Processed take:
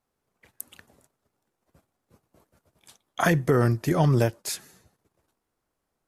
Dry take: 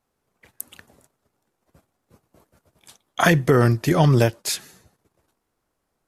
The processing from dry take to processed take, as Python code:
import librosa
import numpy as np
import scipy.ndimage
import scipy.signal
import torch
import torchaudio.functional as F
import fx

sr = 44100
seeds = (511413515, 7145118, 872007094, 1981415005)

y = fx.dynamic_eq(x, sr, hz=3300.0, q=1.0, threshold_db=-41.0, ratio=4.0, max_db=-5)
y = y * 10.0 ** (-4.5 / 20.0)